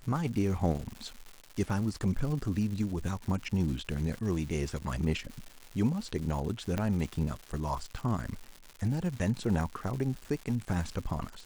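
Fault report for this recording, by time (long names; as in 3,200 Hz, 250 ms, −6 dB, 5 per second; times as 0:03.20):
surface crackle 280 per second −38 dBFS
0:06.78: click −17 dBFS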